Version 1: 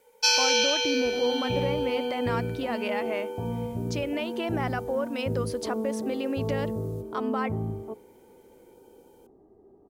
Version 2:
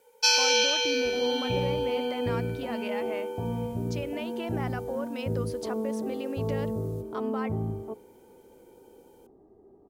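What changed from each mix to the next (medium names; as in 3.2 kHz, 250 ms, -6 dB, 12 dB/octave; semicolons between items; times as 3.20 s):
speech -5.5 dB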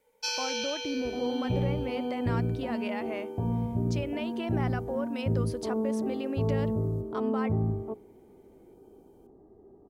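first sound -10.5 dB; master: add bass shelf 240 Hz +4.5 dB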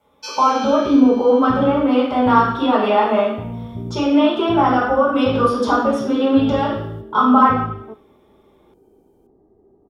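reverb: on, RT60 0.70 s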